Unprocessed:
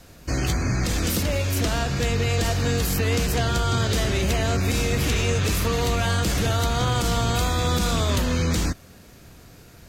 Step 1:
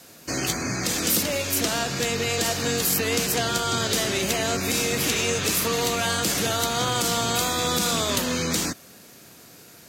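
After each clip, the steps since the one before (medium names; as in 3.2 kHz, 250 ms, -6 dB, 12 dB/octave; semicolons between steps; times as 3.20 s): high-pass 190 Hz 12 dB/octave; treble shelf 4.4 kHz +8 dB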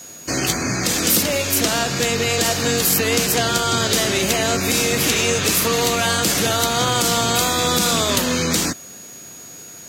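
whistle 6.7 kHz -43 dBFS; trim +5.5 dB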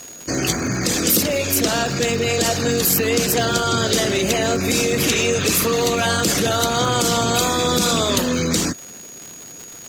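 resonances exaggerated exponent 1.5; crackle 200 per s -26 dBFS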